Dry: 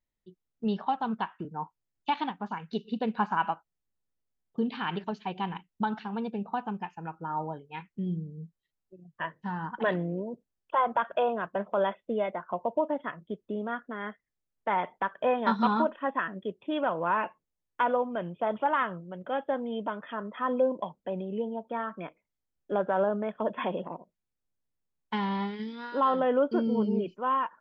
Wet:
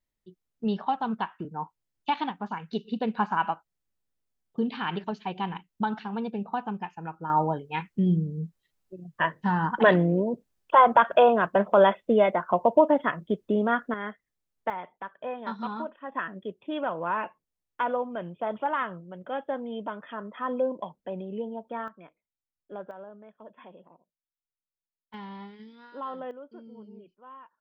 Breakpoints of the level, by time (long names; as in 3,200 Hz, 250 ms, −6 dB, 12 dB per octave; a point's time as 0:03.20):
+1.5 dB
from 0:07.30 +9 dB
from 0:13.94 +2 dB
from 0:14.70 −8.5 dB
from 0:16.12 −1.5 dB
from 0:21.88 −11 dB
from 0:22.91 −18 dB
from 0:25.14 −11 dB
from 0:26.31 −20 dB